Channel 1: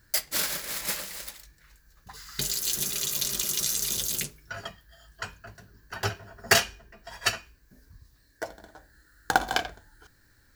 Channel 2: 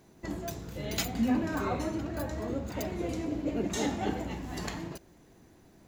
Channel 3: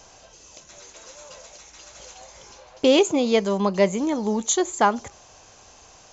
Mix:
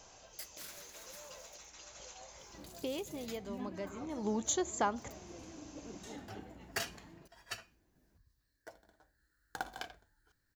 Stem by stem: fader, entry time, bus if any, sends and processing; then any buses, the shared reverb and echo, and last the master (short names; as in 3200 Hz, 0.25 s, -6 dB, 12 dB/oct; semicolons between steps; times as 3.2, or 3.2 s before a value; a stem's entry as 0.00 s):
-17.5 dB, 0.25 s, muted 3.26–5.96, no send, auto duck -9 dB, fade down 1.40 s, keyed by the third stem
-17.5 dB, 2.30 s, no send, dry
2.39 s -8 dB -> 3.06 s -18 dB -> 4.07 s -18 dB -> 4.28 s -7.5 dB, 0.00 s, no send, compressor 2:1, threshold -25 dBFS, peak gain reduction 7.5 dB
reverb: off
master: dry